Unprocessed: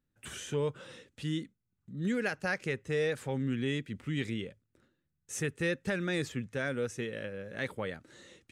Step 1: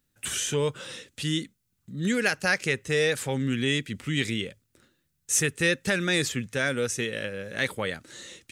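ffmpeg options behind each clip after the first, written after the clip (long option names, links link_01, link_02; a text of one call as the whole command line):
ffmpeg -i in.wav -af "highshelf=frequency=2400:gain=12,volume=5dB" out.wav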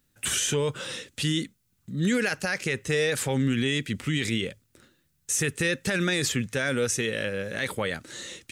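ffmpeg -i in.wav -af "alimiter=limit=-21dB:level=0:latency=1:release=26,volume=4.5dB" out.wav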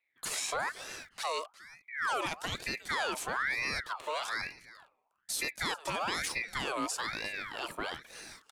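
ffmpeg -i in.wav -filter_complex "[0:a]acrossover=split=270|610|1900[link_01][link_02][link_03][link_04];[link_04]aeval=exprs='sgn(val(0))*max(abs(val(0))-0.00141,0)':channel_layout=same[link_05];[link_01][link_02][link_03][link_05]amix=inputs=4:normalize=0,aecho=1:1:358:0.119,aeval=exprs='val(0)*sin(2*PI*1500*n/s+1500*0.5/1.1*sin(2*PI*1.1*n/s))':channel_layout=same,volume=-5.5dB" out.wav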